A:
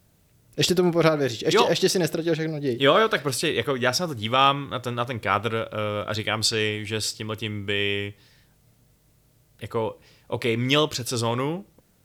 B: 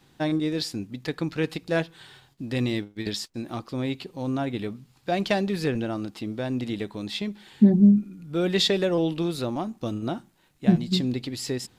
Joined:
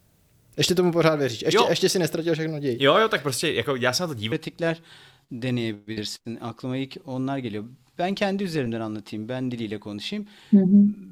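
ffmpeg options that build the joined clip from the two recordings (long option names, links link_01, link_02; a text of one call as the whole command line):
ffmpeg -i cue0.wav -i cue1.wav -filter_complex "[0:a]apad=whole_dur=11.11,atrim=end=11.11,atrim=end=4.322[link_01];[1:a]atrim=start=1.408:end=8.2[link_02];[link_01][link_02]acrossfade=duration=0.004:curve1=hsin:curve2=hsin" out.wav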